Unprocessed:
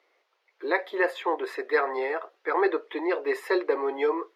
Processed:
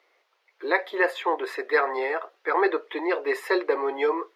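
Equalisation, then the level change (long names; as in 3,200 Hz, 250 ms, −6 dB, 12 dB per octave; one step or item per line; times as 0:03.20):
low-shelf EQ 370 Hz −6 dB
+3.5 dB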